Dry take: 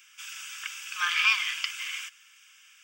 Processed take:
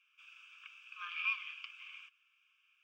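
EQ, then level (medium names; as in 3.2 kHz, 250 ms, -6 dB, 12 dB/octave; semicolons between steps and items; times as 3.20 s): vowel filter a; peaking EQ 7.3 kHz -10 dB 1.8 oct; static phaser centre 330 Hz, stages 4; +2.5 dB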